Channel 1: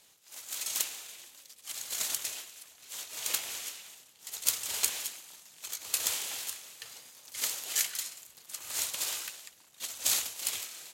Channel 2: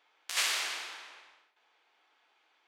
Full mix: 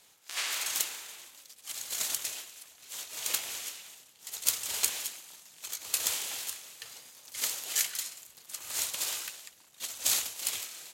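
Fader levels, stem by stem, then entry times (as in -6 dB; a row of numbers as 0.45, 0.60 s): +0.5, -4.0 dB; 0.00, 0.00 s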